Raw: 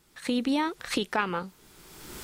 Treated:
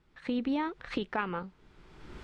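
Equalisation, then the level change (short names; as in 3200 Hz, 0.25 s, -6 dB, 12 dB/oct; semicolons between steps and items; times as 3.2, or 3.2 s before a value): LPF 2700 Hz 12 dB/oct; low shelf 96 Hz +9.5 dB; -5.0 dB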